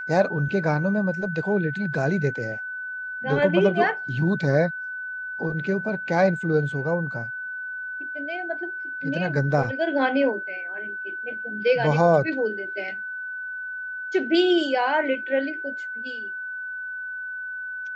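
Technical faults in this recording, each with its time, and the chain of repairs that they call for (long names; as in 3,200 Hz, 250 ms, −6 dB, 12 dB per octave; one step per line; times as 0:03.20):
whistle 1,500 Hz −30 dBFS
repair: notch filter 1,500 Hz, Q 30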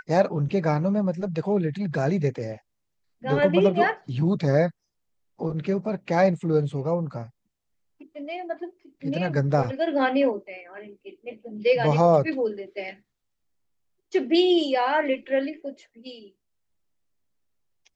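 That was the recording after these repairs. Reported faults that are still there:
none of them is left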